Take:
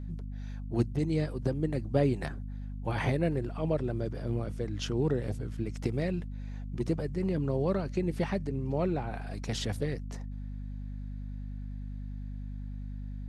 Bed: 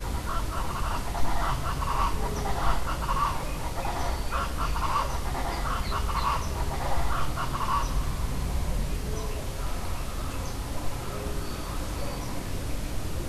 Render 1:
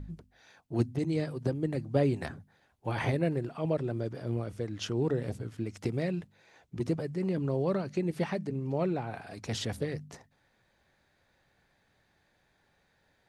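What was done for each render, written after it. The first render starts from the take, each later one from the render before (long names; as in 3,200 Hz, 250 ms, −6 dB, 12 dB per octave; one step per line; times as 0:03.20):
hum removal 50 Hz, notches 5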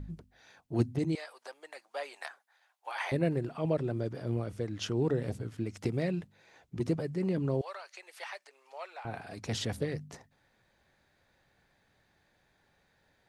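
0:01.15–0:03.12: high-pass filter 750 Hz 24 dB per octave
0:07.61–0:09.05: Bessel high-pass filter 1,100 Hz, order 6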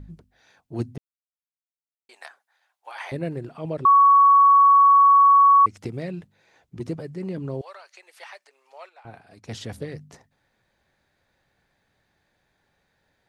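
0:00.98–0:02.09: silence
0:03.85–0:05.66: beep over 1,120 Hz −10.5 dBFS
0:08.89–0:09.65: expander for the loud parts, over −48 dBFS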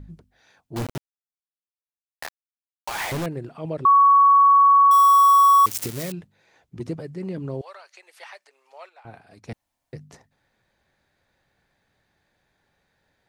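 0:00.76–0:03.26: log-companded quantiser 2 bits
0:04.91–0:06.12: spike at every zero crossing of −19 dBFS
0:09.53–0:09.93: fill with room tone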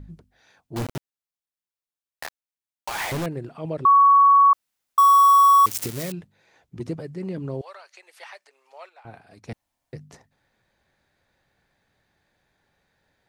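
0:04.53–0:04.98: fill with room tone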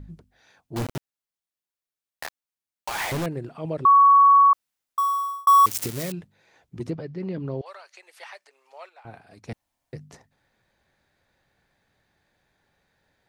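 0:04.37–0:05.47: fade out
0:06.90–0:07.66: low-pass filter 5,200 Hz 24 dB per octave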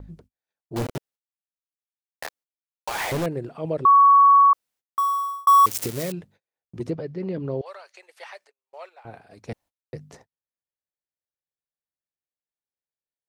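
noise gate −53 dBFS, range −37 dB
parametric band 490 Hz +5 dB 0.93 octaves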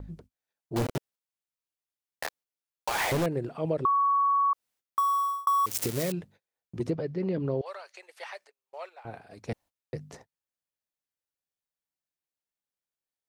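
brickwall limiter −13.5 dBFS, peak gain reduction 3.5 dB
downward compressor, threshold −23 dBFS, peak gain reduction 7.5 dB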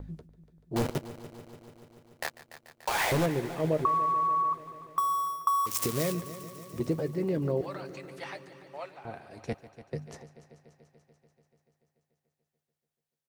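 double-tracking delay 13 ms −12 dB
echo machine with several playback heads 145 ms, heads first and second, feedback 69%, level −18 dB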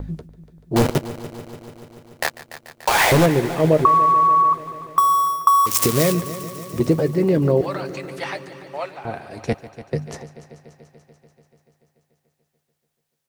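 level +12 dB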